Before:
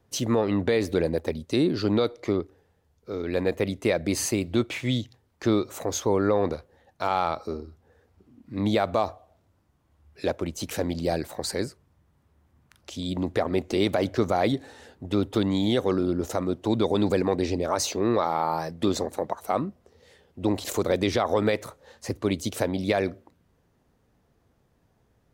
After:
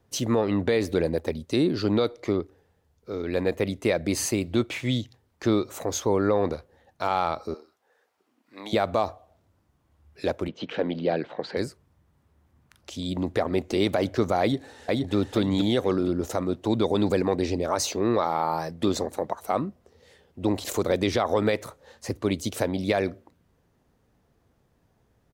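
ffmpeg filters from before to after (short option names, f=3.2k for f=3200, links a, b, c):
-filter_complex "[0:a]asettb=1/sr,asplit=3[a][b][c];[a]atrim=end=7.544[d];[b]atrim=start=7.54:end=8.73,asetpts=PTS-STARTPTS,afade=t=in:d=0.004:c=qsin,afade=t=out:st=1.186:d=0.004:c=qsin,highpass=680[e];[c]atrim=start=8.726[f];[d][e]acrossfade=d=0.004:c1=hsin:c2=qsin[g];[g][f]acrossfade=d=0.004:c1=qsin:c2=hsin,asettb=1/sr,asplit=3[h][i][j];[h]atrim=end=10.484[k];[i]atrim=start=10.48:end=11.57,asetpts=PTS-STARTPTS,afade=t=in:d=0.004:c=qsin,afade=t=out:st=1.086:d=0.004:c=qsin,highpass=f=140:w=0.5412,highpass=f=140:w=1.3066,equalizer=f=470:t=q:w=4:g=4,equalizer=f=1.5k:t=q:w=4:g=3,equalizer=f=3.1k:t=q:w=4:g=5,lowpass=f=3.5k:w=0.5412,lowpass=f=3.5k:w=1.3066[l];[j]atrim=start=11.566[m];[k][l]acrossfade=d=0.004:c1=hsin:c2=qsin[n];[n][m]acrossfade=d=0.004:c1=qsin:c2=hsin,asplit=2[o][p];[p]afade=t=in:st=14.41:d=0.01,afade=t=out:st=15.14:d=0.01,aecho=0:1:470|940|1410|1880:0.841395|0.252419|0.0757256|0.0227177[q];[o][q]amix=inputs=2:normalize=0"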